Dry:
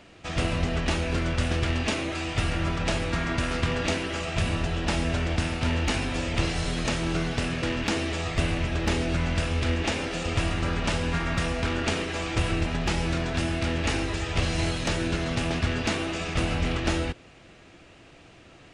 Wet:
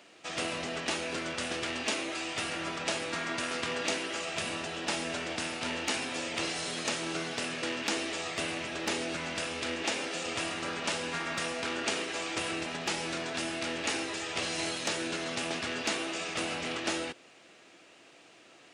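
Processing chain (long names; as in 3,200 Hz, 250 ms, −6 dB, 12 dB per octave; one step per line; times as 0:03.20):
high-pass filter 300 Hz 12 dB per octave
high-shelf EQ 4,500 Hz +7.5 dB
level −4.5 dB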